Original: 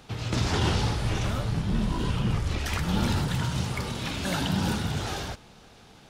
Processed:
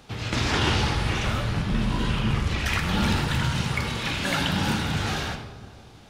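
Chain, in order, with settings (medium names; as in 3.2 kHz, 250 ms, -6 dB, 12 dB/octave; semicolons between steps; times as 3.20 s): on a send at -5 dB: reverberation RT60 1.9 s, pre-delay 4 ms; on the sum: dynamic bell 2.1 kHz, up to +7 dB, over -46 dBFS, Q 0.72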